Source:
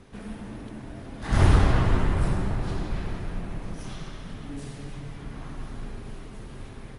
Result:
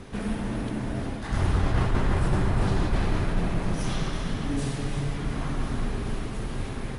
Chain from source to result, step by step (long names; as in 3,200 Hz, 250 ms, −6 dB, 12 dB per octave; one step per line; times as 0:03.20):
echo with a time of its own for lows and highs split 310 Hz, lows 135 ms, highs 353 ms, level −10 dB
reversed playback
downward compressor 16 to 1, threshold −27 dBFS, peak gain reduction 16 dB
reversed playback
level +8.5 dB